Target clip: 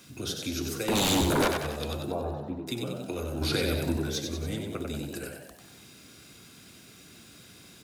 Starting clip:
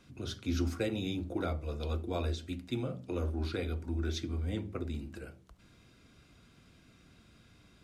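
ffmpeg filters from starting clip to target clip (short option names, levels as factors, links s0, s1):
-filter_complex "[0:a]highpass=93,aemphasis=mode=production:type=75fm,acompressor=threshold=0.0141:ratio=6,asettb=1/sr,asplit=3[s0][s1][s2];[s0]atrim=end=0.884[s3];[s1]atrim=start=0.88:end=1.48,asetpts=PTS-STARTPTS,afade=t=in:d=0.004:c=qsin,afade=t=out:st=0.596:d=0.004:c=qsin,aeval=exprs='0.0376*sin(PI/2*3.98*val(0)/0.0376)':c=same[s4];[s2]atrim=start=1.476[s5];[s3][s4]acrossfade=d=0.004:c1=hsin:c2=qsin[s6];[s6][s5]acrossfade=d=0.004:c1=qsin:c2=hsin,asettb=1/sr,asplit=3[s7][s8][s9];[s7]atrim=end=2.114[s10];[s8]atrim=start=2.11:end=2.67,asetpts=PTS-STARTPTS,afade=t=in:d=0.004:c=qsin,afade=t=out:st=0.556:d=0.004:c=qsin,lowpass=f=800:t=q:w=1.6[s11];[s9]atrim=start=2.666[s12];[s10][s11]acrossfade=d=0.004:c1=hsin:c2=qsin[s13];[s13][s12]acrossfade=d=0.004:c1=qsin:c2=hsin,asettb=1/sr,asplit=3[s14][s15][s16];[s14]atrim=end=3.414[s17];[s15]atrim=start=3.41:end=3.97,asetpts=PTS-STARTPTS,afade=t=in:d=0.004:c=qsin,afade=t=out:st=0.556:d=0.004:c=qsin,acontrast=48[s18];[s16]atrim=start=3.966[s19];[s17][s18]acrossfade=d=0.004:c1=hsin:c2=qsin[s20];[s20][s19]acrossfade=d=0.004:c1=qsin:c2=hsin,asplit=8[s21][s22][s23][s24][s25][s26][s27][s28];[s22]adelay=94,afreqshift=67,volume=0.562[s29];[s23]adelay=188,afreqshift=134,volume=0.292[s30];[s24]adelay=282,afreqshift=201,volume=0.151[s31];[s25]adelay=376,afreqshift=268,volume=0.0794[s32];[s26]adelay=470,afreqshift=335,volume=0.0412[s33];[s27]adelay=564,afreqshift=402,volume=0.0214[s34];[s28]adelay=658,afreqshift=469,volume=0.0111[s35];[s21][s29][s30][s31][s32][s33][s34][s35]amix=inputs=8:normalize=0,volume=2.11"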